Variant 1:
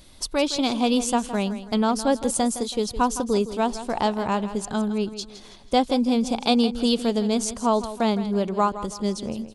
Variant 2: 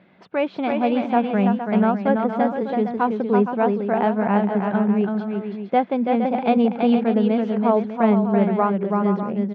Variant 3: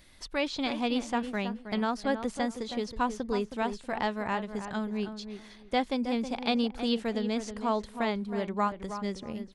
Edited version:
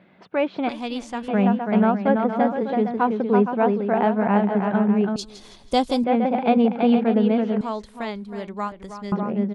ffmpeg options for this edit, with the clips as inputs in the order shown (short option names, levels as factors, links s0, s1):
-filter_complex "[2:a]asplit=2[s0][s1];[1:a]asplit=4[s2][s3][s4][s5];[s2]atrim=end=0.692[s6];[s0]atrim=start=0.688:end=1.282[s7];[s3]atrim=start=1.278:end=5.162[s8];[0:a]atrim=start=5.158:end=6.042[s9];[s4]atrim=start=6.038:end=7.612[s10];[s1]atrim=start=7.608:end=9.122[s11];[s5]atrim=start=9.118[s12];[s6][s7]acrossfade=d=0.004:c1=hsin:c2=hsin[s13];[s13][s8]acrossfade=d=0.004:c1=hsin:c2=hsin[s14];[s14][s9]acrossfade=d=0.004:c1=hsin:c2=hsin[s15];[s15][s10]acrossfade=d=0.004:c1=hsin:c2=hsin[s16];[s16][s11]acrossfade=d=0.004:c1=hsin:c2=hsin[s17];[s17][s12]acrossfade=d=0.004:c1=hsin:c2=hsin"